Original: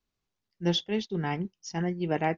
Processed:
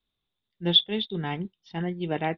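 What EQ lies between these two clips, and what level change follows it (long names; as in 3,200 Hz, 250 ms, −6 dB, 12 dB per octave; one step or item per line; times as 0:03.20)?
low-pass with resonance 3,600 Hz, resonance Q 14
high-frequency loss of the air 310 metres
0.0 dB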